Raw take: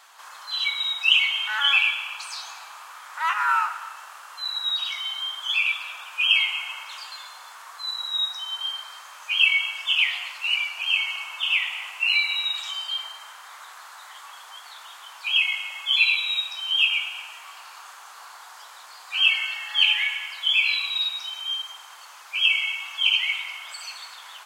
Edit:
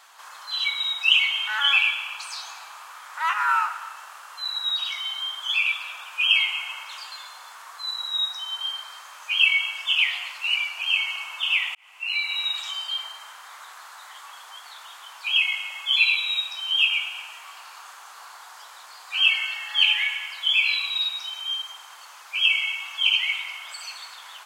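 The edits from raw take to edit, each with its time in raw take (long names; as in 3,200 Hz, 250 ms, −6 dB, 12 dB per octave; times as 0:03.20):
0:11.75–0:12.46: fade in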